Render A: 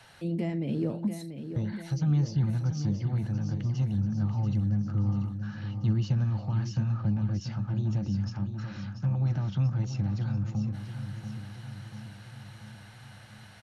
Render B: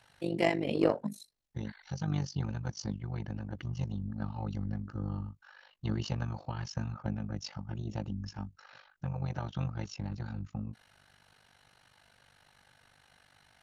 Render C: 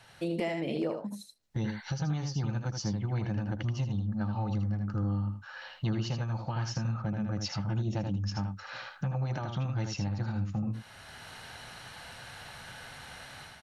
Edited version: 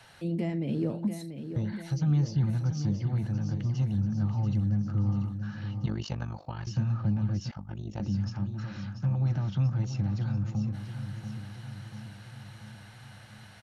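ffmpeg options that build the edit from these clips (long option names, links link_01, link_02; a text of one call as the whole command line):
ffmpeg -i take0.wav -i take1.wav -filter_complex "[1:a]asplit=2[link_01][link_02];[0:a]asplit=3[link_03][link_04][link_05];[link_03]atrim=end=5.862[link_06];[link_01]atrim=start=5.858:end=6.672[link_07];[link_04]atrim=start=6.668:end=7.512[link_08];[link_02]atrim=start=7.508:end=8.002[link_09];[link_05]atrim=start=7.998[link_10];[link_06][link_07]acrossfade=duration=0.004:curve1=hsin:curve2=hsin[link_11];[link_11][link_08]acrossfade=duration=0.004:curve1=hsin:curve2=hsin[link_12];[link_12][link_09]acrossfade=duration=0.004:curve1=hsin:curve2=hsin[link_13];[link_13][link_10]acrossfade=duration=0.004:curve1=hsin:curve2=hsin" out.wav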